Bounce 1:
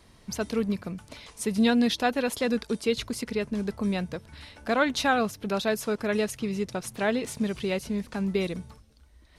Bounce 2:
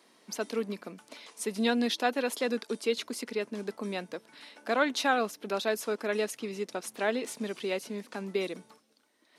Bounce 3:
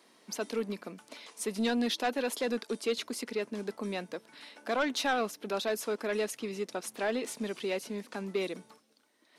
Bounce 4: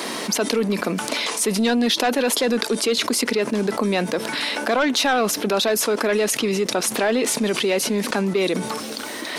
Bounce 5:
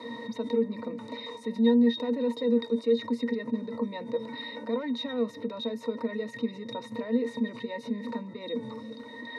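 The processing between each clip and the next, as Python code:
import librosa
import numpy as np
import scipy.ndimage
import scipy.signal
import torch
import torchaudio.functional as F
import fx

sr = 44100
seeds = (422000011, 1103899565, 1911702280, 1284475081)

y1 = scipy.signal.sosfilt(scipy.signal.butter(4, 250.0, 'highpass', fs=sr, output='sos'), x)
y1 = F.gain(torch.from_numpy(y1), -2.5).numpy()
y2 = 10.0 ** (-22.0 / 20.0) * np.tanh(y1 / 10.0 ** (-22.0 / 20.0))
y3 = fx.env_flatten(y2, sr, amount_pct=70)
y3 = F.gain(torch.from_numpy(y3), 8.5).numpy()
y4 = fx.octave_resonator(y3, sr, note='A#', decay_s=0.11)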